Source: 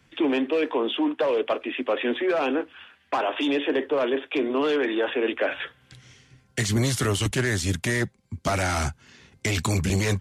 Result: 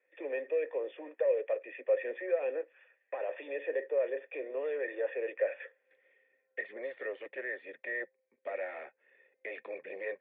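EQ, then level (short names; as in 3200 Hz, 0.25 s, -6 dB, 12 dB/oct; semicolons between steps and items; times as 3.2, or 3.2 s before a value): vocal tract filter e; HPF 400 Hz 24 dB/oct; 0.0 dB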